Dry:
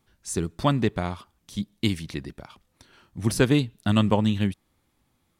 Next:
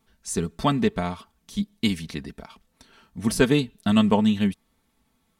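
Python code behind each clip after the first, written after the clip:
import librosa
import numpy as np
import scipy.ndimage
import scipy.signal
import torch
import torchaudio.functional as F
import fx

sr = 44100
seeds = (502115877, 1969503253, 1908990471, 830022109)

y = x + 0.61 * np.pad(x, (int(4.5 * sr / 1000.0), 0))[:len(x)]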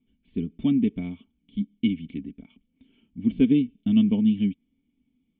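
y = fx.formant_cascade(x, sr, vowel='i')
y = y * 10.0 ** (5.5 / 20.0)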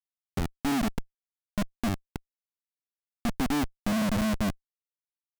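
y = fx.schmitt(x, sr, flips_db=-23.5)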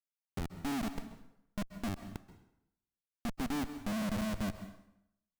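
y = fx.rev_plate(x, sr, seeds[0], rt60_s=0.79, hf_ratio=0.8, predelay_ms=120, drr_db=10.5)
y = y * 10.0 ** (-8.5 / 20.0)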